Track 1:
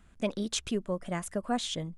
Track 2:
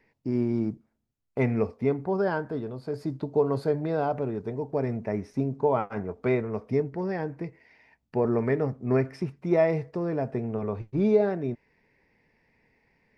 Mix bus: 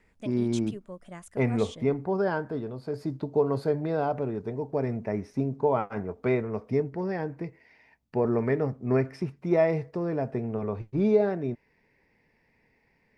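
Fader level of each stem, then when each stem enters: -9.5, -0.5 dB; 0.00, 0.00 s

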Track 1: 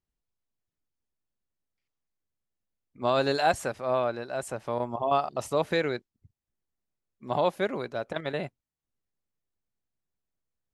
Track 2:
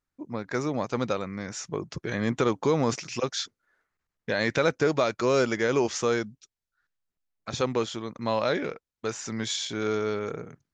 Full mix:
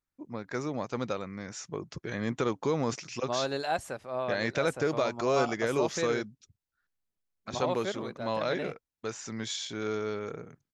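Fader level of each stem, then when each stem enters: -6.5, -5.0 dB; 0.25, 0.00 s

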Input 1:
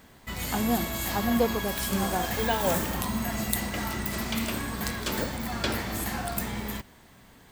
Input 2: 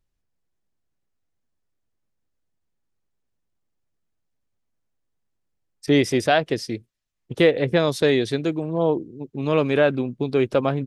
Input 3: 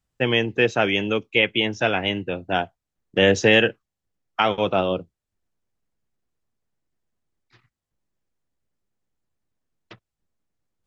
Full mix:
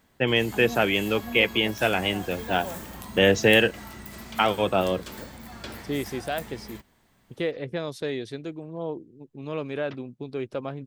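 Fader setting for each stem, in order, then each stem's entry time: -10.0, -11.5, -2.0 dB; 0.00, 0.00, 0.00 s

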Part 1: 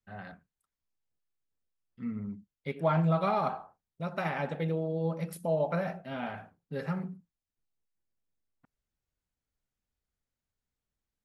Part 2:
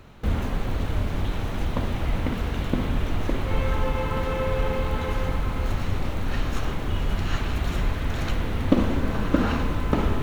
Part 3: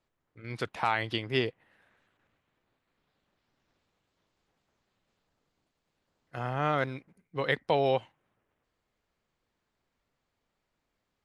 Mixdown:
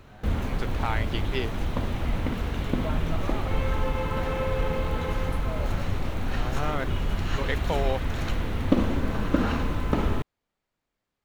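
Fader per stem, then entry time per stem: -9.0, -2.0, -2.5 dB; 0.00, 0.00, 0.00 s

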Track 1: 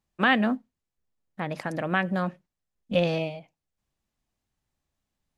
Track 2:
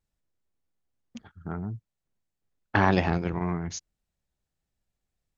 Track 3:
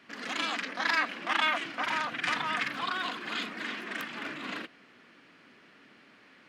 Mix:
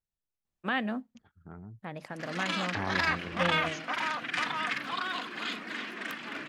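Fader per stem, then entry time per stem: -9.0, -12.5, -1.0 dB; 0.45, 0.00, 2.10 s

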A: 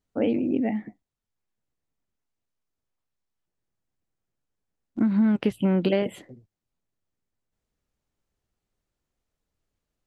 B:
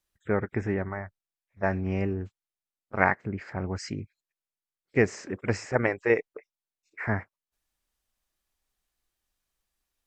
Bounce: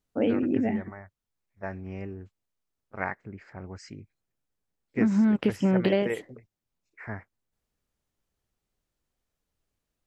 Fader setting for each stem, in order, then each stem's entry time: -1.0, -9.0 dB; 0.00, 0.00 s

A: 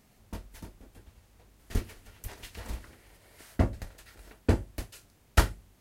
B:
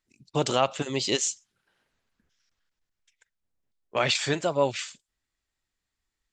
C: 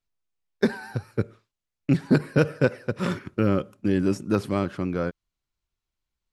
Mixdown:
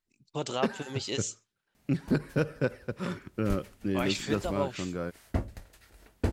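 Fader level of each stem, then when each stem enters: -4.5, -8.0, -7.5 dB; 1.75, 0.00, 0.00 s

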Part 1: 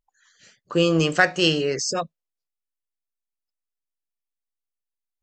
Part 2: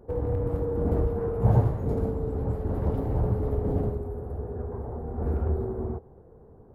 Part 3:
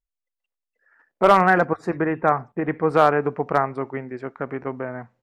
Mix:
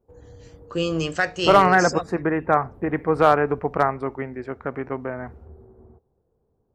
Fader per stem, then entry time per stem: -5.0, -18.5, 0.0 dB; 0.00, 0.00, 0.25 s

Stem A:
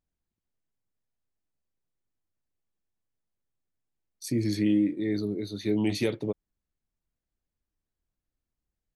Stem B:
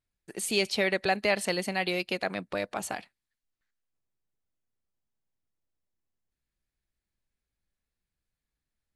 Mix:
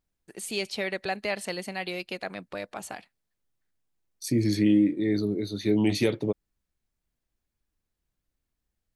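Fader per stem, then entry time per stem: +3.0, -4.0 dB; 0.00, 0.00 s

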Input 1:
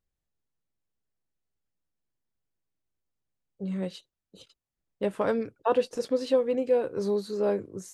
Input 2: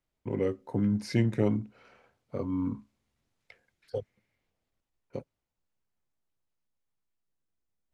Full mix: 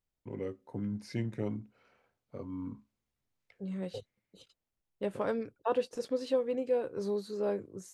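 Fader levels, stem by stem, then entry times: -6.0, -9.0 dB; 0.00, 0.00 s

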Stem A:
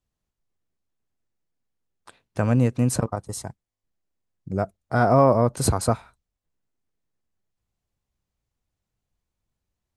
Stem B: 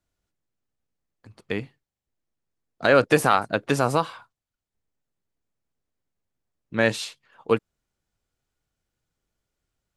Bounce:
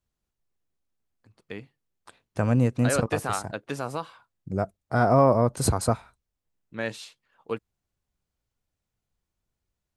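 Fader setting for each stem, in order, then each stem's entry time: -2.0, -10.0 dB; 0.00, 0.00 s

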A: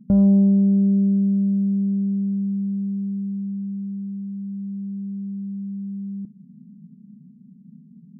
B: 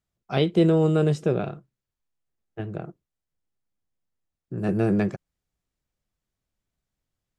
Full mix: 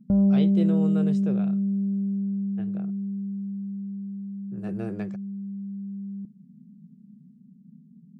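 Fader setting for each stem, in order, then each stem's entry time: -4.5, -11.0 dB; 0.00, 0.00 s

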